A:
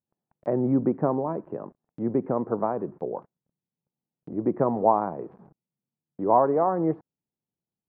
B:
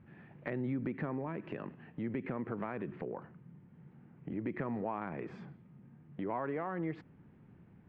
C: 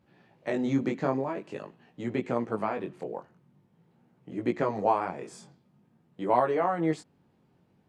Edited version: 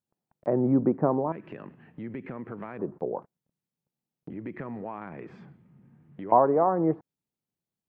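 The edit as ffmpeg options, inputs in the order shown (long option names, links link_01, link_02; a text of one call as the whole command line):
ffmpeg -i take0.wav -i take1.wav -filter_complex "[1:a]asplit=2[link_01][link_02];[0:a]asplit=3[link_03][link_04][link_05];[link_03]atrim=end=1.322[link_06];[link_01]atrim=start=1.318:end=2.792[link_07];[link_04]atrim=start=2.788:end=4.302[link_08];[link_02]atrim=start=4.298:end=6.322[link_09];[link_05]atrim=start=6.318[link_10];[link_06][link_07]acrossfade=duration=0.004:curve1=hsin:curve2=hsin[link_11];[link_11][link_08]acrossfade=duration=0.004:curve1=hsin:curve2=hsin[link_12];[link_12][link_09]acrossfade=duration=0.004:curve1=hsin:curve2=hsin[link_13];[link_13][link_10]acrossfade=duration=0.004:curve1=hsin:curve2=hsin" out.wav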